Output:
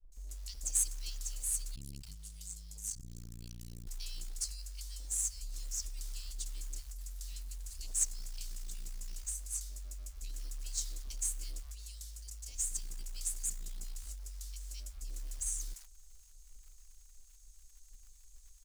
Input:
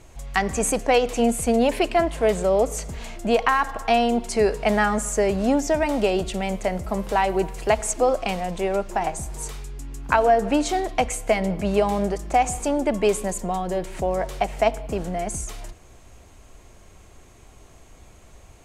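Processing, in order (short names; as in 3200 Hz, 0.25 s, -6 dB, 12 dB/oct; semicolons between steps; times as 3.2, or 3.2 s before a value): inverse Chebyshev band-stop 130–1600 Hz, stop band 60 dB; short-mantissa float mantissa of 2-bit; bands offset in time lows, highs 0.12 s, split 790 Hz; 1.75–3.87 core saturation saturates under 520 Hz; gain -4 dB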